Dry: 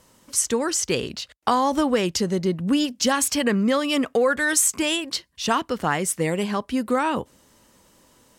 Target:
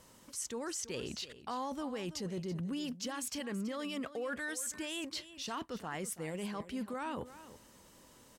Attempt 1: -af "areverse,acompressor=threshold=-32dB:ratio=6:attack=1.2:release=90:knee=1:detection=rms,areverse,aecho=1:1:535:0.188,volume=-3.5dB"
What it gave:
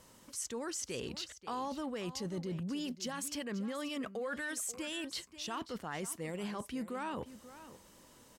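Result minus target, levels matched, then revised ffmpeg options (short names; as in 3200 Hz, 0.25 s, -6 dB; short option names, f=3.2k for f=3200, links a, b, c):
echo 0.205 s late
-af "areverse,acompressor=threshold=-32dB:ratio=6:attack=1.2:release=90:knee=1:detection=rms,areverse,aecho=1:1:330:0.188,volume=-3.5dB"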